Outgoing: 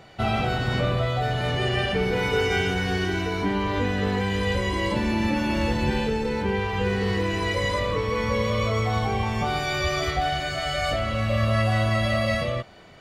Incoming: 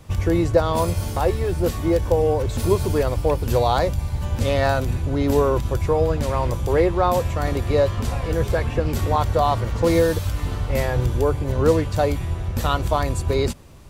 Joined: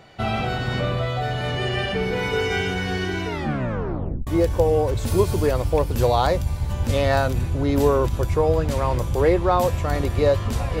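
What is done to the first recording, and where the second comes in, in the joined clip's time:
outgoing
3.26 s: tape stop 1.01 s
4.27 s: go over to incoming from 1.79 s

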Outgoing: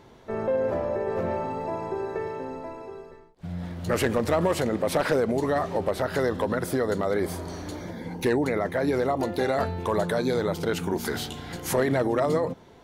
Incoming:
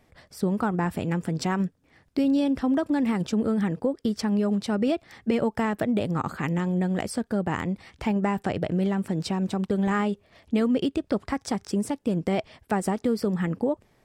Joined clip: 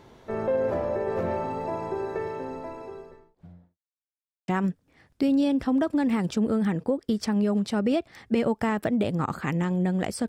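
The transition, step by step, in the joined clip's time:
outgoing
2.86–3.78 s: studio fade out
3.78–4.48 s: mute
4.48 s: go over to incoming from 1.44 s

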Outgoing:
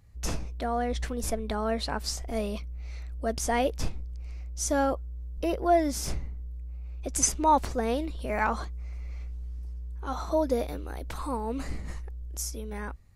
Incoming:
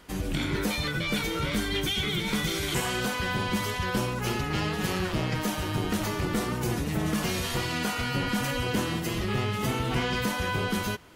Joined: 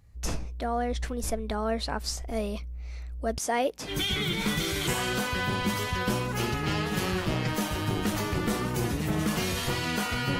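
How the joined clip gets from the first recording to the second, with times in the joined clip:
outgoing
3.38–3.98 s: high-pass 240 Hz 12 dB/octave
3.91 s: go over to incoming from 1.78 s, crossfade 0.14 s

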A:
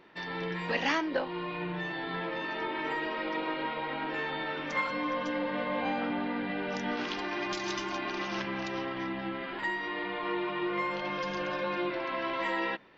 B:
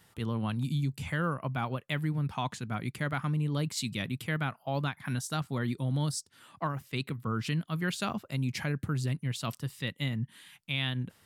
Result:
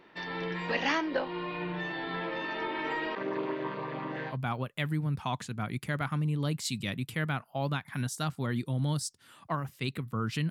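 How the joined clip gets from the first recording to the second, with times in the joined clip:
A
3.15–4.37 s: vocoder on a held chord minor triad, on C3
4.32 s: go over to B from 1.44 s, crossfade 0.10 s

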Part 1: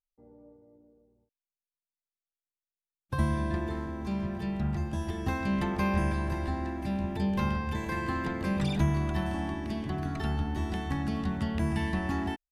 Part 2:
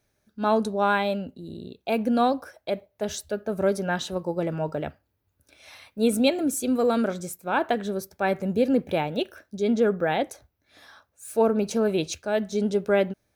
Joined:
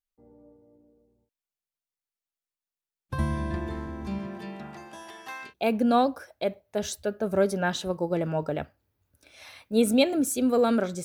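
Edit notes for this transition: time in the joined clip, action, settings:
part 1
4.18–5.54 s: high-pass 170 Hz -> 1.4 kHz
5.48 s: go over to part 2 from 1.74 s, crossfade 0.12 s

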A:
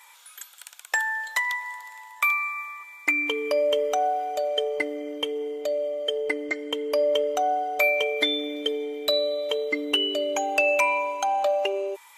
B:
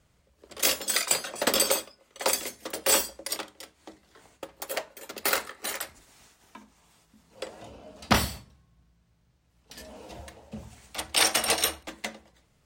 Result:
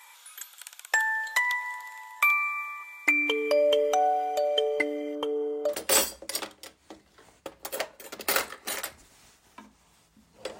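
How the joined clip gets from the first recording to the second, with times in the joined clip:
A
5.15–5.75 s: resonant high shelf 1.7 kHz -7.5 dB, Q 3
5.71 s: go over to B from 2.68 s, crossfade 0.08 s

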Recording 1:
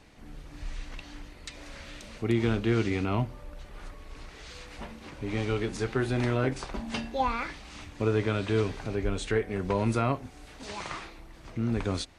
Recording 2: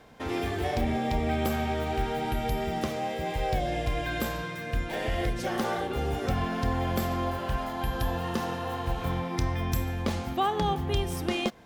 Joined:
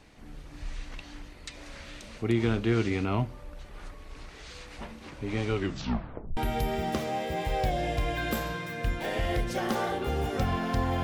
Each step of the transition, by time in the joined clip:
recording 1
5.54 s: tape stop 0.83 s
6.37 s: go over to recording 2 from 2.26 s

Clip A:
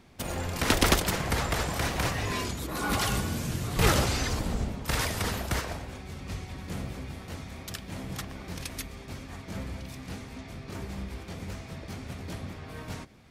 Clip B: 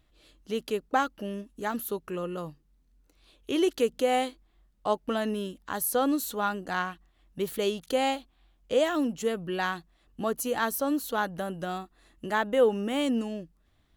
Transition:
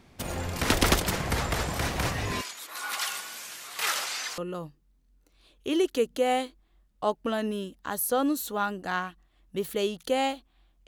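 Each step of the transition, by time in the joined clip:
clip A
2.41–4.38 s: high-pass 1.2 kHz 12 dB/octave
4.38 s: go over to clip B from 2.21 s

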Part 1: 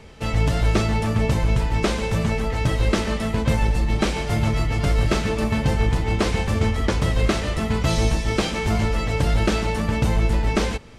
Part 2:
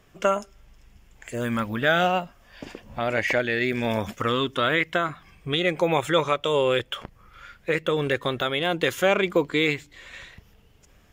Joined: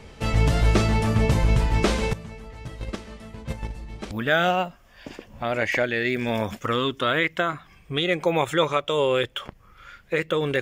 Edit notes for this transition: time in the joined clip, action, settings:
part 1
2.13–4.11 s: gate -15 dBFS, range -17 dB
4.11 s: go over to part 2 from 1.67 s

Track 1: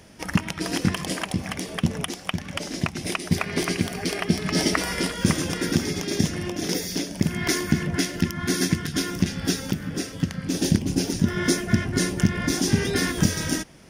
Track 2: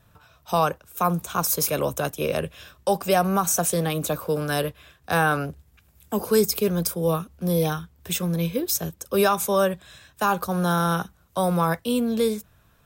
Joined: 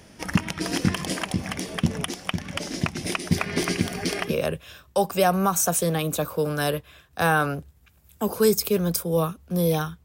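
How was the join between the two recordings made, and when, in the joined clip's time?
track 1
4.29 s: go over to track 2 from 2.20 s, crossfade 0.14 s

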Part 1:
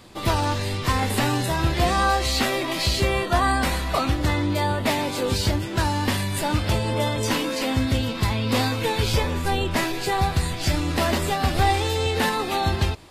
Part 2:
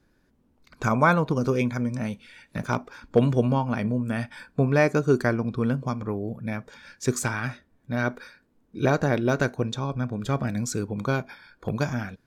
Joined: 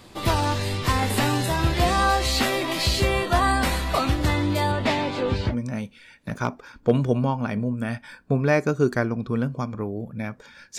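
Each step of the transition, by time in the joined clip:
part 1
4.71–5.56 s: low-pass 7.1 kHz -> 1.8 kHz
5.51 s: go over to part 2 from 1.79 s, crossfade 0.10 s

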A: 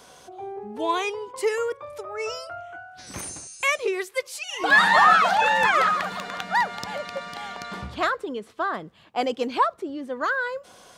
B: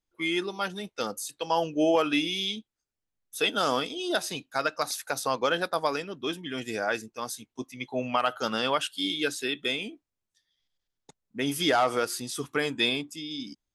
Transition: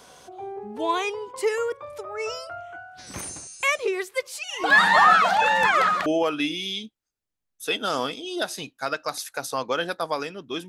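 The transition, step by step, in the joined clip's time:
A
6.06 s: go over to B from 1.79 s

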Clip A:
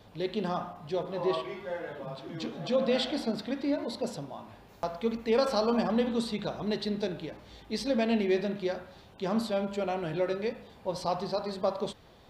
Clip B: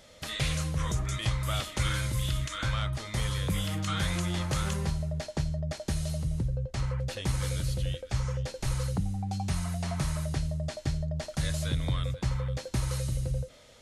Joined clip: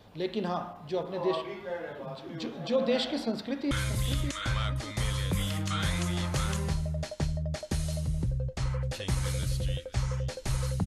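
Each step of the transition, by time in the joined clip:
clip A
3.30–3.71 s: echo throw 600 ms, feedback 40%, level -7.5 dB
3.71 s: go over to clip B from 1.88 s

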